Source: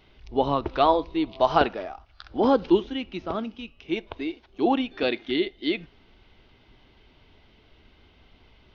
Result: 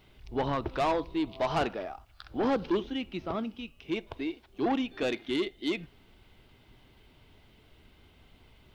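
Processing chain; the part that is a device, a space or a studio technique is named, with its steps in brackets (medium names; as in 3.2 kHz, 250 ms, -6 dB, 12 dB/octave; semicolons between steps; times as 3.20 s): open-reel tape (saturation -20 dBFS, distortion -9 dB; peaking EQ 130 Hz +4.5 dB 1.02 oct; white noise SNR 45 dB); trim -3 dB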